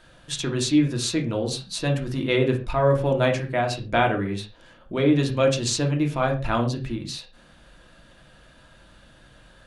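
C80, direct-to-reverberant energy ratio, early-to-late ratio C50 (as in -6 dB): 15.5 dB, 1.5 dB, 10.5 dB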